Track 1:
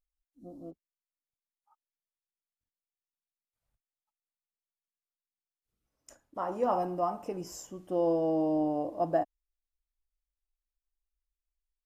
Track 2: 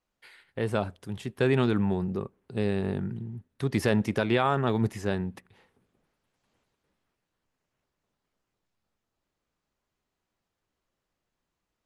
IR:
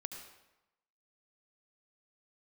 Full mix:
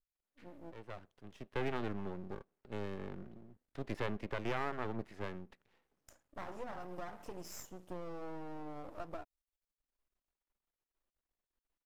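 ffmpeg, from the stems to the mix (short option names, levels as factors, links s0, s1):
-filter_complex "[0:a]acompressor=threshold=0.02:ratio=12,adynamicequalizer=threshold=0.00251:dfrequency=1800:dqfactor=0.7:tfrequency=1800:tqfactor=0.7:attack=5:release=100:ratio=0.375:range=2.5:mode=boostabove:tftype=highshelf,volume=0.708,asplit=2[s0][s1];[1:a]acrossover=split=190 3900:gain=0.251 1 0.141[s2][s3][s4];[s2][s3][s4]amix=inputs=3:normalize=0,adelay=150,volume=0.398[s5];[s1]apad=whole_len=529380[s6];[s5][s6]sidechaincompress=threshold=0.002:ratio=4:attack=6.6:release=749[s7];[s0][s7]amix=inputs=2:normalize=0,aeval=exprs='max(val(0),0)':c=same,adynamicequalizer=threshold=0.00158:dfrequency=3300:dqfactor=0.7:tfrequency=3300:tqfactor=0.7:attack=5:release=100:ratio=0.375:range=2.5:mode=cutabove:tftype=highshelf"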